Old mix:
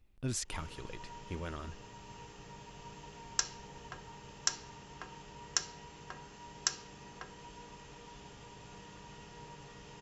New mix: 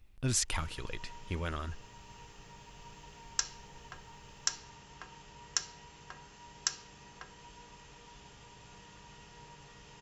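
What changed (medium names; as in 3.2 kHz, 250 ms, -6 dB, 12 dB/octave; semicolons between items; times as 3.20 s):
speech +7.5 dB; master: add peaking EQ 320 Hz -5.5 dB 2.8 oct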